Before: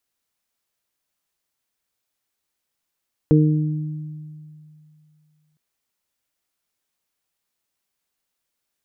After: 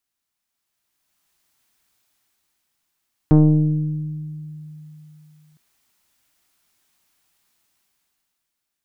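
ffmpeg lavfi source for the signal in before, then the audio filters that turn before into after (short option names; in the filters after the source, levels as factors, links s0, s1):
-f lavfi -i "aevalsrc='0.251*pow(10,-3*t/2.54)*sin(2*PI*153*t)+0.224*pow(10,-3*t/1.38)*sin(2*PI*306*t)+0.133*pow(10,-3*t/0.65)*sin(2*PI*459*t)':d=2.26:s=44100"
-af "equalizer=f=500:w=4.2:g=-10.5,dynaudnorm=f=130:g=17:m=5.31,aeval=exprs='(tanh(2*val(0)+0.5)-tanh(0.5))/2':c=same"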